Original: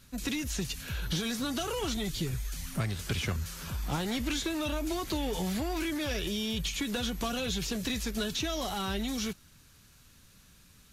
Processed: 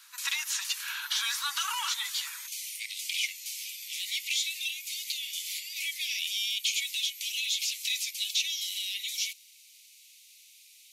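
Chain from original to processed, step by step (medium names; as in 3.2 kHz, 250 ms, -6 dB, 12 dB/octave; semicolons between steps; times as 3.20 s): steep high-pass 900 Hz 96 dB/octave, from 2.46 s 2.1 kHz; trim +6.5 dB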